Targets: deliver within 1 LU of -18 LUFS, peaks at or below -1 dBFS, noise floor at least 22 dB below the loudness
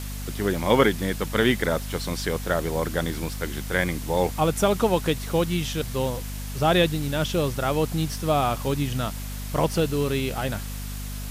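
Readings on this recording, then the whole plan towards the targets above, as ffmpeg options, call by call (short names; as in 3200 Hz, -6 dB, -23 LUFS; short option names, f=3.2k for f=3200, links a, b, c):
hum 50 Hz; harmonics up to 250 Hz; hum level -31 dBFS; noise floor -33 dBFS; noise floor target -47 dBFS; loudness -25.0 LUFS; peak -5.5 dBFS; loudness target -18.0 LUFS
-> -af "bandreject=f=50:t=h:w=4,bandreject=f=100:t=h:w=4,bandreject=f=150:t=h:w=4,bandreject=f=200:t=h:w=4,bandreject=f=250:t=h:w=4"
-af "afftdn=nr=14:nf=-33"
-af "volume=7dB,alimiter=limit=-1dB:level=0:latency=1"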